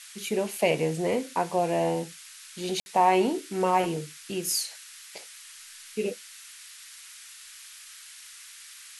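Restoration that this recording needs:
ambience match 0:02.80–0:02.86
noise reduction from a noise print 26 dB

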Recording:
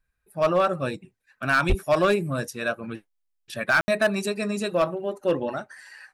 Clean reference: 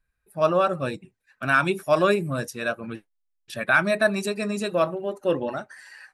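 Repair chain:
clipped peaks rebuilt −14 dBFS
0:01.68–0:01.80: high-pass filter 140 Hz 24 dB per octave
ambience match 0:03.81–0:03.88

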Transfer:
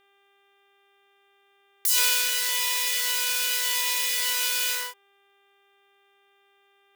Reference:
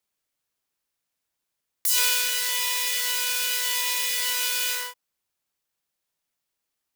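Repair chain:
hum removal 397.5 Hz, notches 9

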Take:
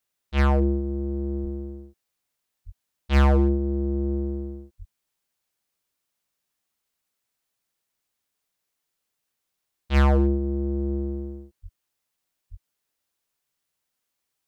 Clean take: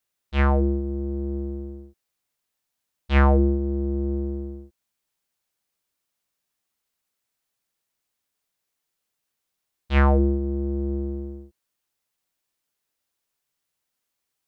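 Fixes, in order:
clipped peaks rebuilt −14 dBFS
high-pass at the plosives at 0:01.42/0:02.65/0:04.78/0:11.62/0:12.50

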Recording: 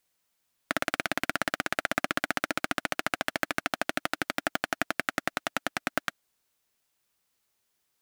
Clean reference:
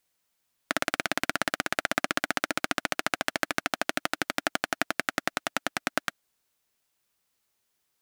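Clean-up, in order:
clipped peaks rebuilt −8.5 dBFS

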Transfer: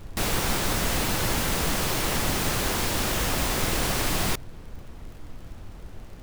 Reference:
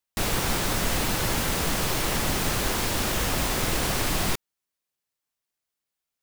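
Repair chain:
click removal
noise reduction from a noise print 30 dB

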